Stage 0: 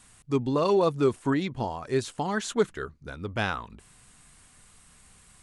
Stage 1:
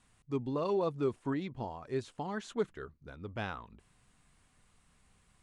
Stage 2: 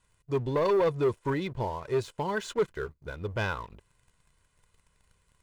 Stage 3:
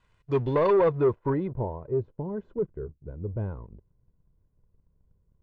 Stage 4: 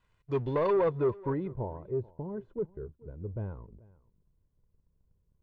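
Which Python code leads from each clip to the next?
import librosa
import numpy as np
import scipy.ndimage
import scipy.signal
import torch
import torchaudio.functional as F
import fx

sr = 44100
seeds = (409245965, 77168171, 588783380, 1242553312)

y1 = fx.lowpass(x, sr, hz=2900.0, slope=6)
y1 = fx.peak_eq(y1, sr, hz=1500.0, db=-2.0, octaves=0.77)
y1 = y1 * librosa.db_to_amplitude(-8.5)
y2 = y1 + 0.61 * np.pad(y1, (int(2.0 * sr / 1000.0), 0))[:len(y1)]
y2 = fx.leveller(y2, sr, passes=2)
y3 = fx.filter_sweep_lowpass(y2, sr, from_hz=3500.0, to_hz=350.0, start_s=0.43, end_s=2.05, q=0.71)
y3 = y3 * librosa.db_to_amplitude(3.5)
y4 = y3 + 10.0 ** (-22.5 / 20.0) * np.pad(y3, (int(435 * sr / 1000.0), 0))[:len(y3)]
y4 = y4 * librosa.db_to_amplitude(-5.0)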